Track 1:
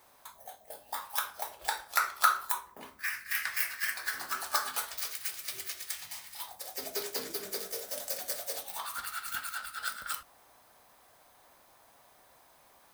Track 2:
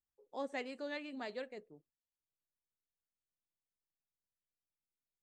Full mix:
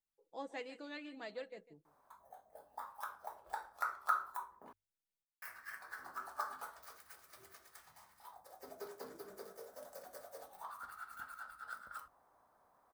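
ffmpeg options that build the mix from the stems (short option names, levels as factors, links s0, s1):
-filter_complex "[0:a]highshelf=f=1800:t=q:w=1.5:g=-12.5,adelay=1850,volume=0.335,asplit=3[s0][s1][s2];[s0]atrim=end=4.73,asetpts=PTS-STARTPTS,afade=t=out:st=4.726:d=0.004:c=hsin[s3];[s1]atrim=start=4.73:end=5.42,asetpts=PTS-STARTPTS,volume=0[s4];[s2]atrim=start=5.42,asetpts=PTS-STARTPTS,afade=t=in:d=0.004:c=hsin[s5];[s3][s4][s5]concat=n=3:v=0:a=1[s6];[1:a]aecho=1:1:6.1:0.57,volume=0.596,asplit=2[s7][s8];[s8]volume=0.158,aecho=0:1:149:1[s9];[s6][s7][s9]amix=inputs=3:normalize=0,bandreject=f=50:t=h:w=6,bandreject=f=100:t=h:w=6"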